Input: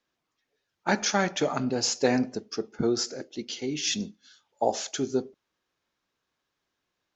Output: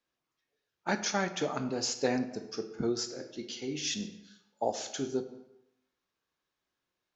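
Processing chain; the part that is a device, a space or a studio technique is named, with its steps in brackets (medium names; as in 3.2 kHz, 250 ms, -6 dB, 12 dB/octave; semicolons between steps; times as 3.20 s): compressed reverb return (on a send at -5 dB: reverberation RT60 0.80 s, pre-delay 12 ms + compression, threshold -28 dBFS, peak gain reduction 8.5 dB); on the sum: trim -6 dB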